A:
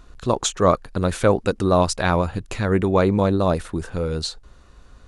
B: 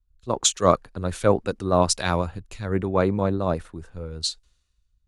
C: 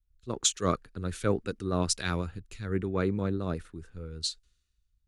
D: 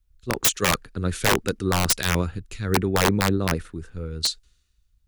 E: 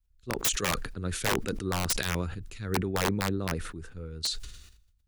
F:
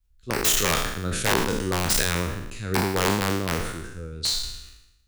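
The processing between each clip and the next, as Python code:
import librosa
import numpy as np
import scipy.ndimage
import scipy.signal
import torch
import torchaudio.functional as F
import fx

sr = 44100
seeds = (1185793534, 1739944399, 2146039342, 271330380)

y1 = fx.band_widen(x, sr, depth_pct=100)
y1 = y1 * librosa.db_to_amplitude(-4.5)
y2 = fx.band_shelf(y1, sr, hz=760.0, db=-9.0, octaves=1.2)
y2 = y2 * librosa.db_to_amplitude(-5.5)
y3 = (np.mod(10.0 ** (19.5 / 20.0) * y2 + 1.0, 2.0) - 1.0) / 10.0 ** (19.5 / 20.0)
y3 = y3 * librosa.db_to_amplitude(8.5)
y4 = fx.sustainer(y3, sr, db_per_s=58.0)
y4 = y4 * librosa.db_to_amplitude(-8.0)
y5 = fx.spec_trails(y4, sr, decay_s=0.84)
y5 = y5 * librosa.db_to_amplitude(3.0)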